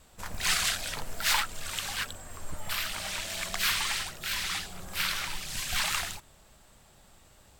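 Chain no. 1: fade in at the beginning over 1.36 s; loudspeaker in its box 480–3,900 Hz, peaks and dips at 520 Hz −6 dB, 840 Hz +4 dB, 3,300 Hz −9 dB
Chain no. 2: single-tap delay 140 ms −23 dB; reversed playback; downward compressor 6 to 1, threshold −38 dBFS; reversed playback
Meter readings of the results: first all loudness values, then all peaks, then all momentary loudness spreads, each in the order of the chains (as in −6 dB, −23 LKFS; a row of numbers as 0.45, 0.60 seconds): −35.0, −40.0 LKFS; −15.0, −23.5 dBFS; 12, 20 LU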